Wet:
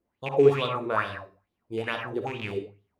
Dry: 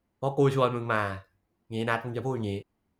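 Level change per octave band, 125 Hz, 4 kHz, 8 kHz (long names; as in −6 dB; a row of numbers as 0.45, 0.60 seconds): −4.5 dB, +4.5 dB, can't be measured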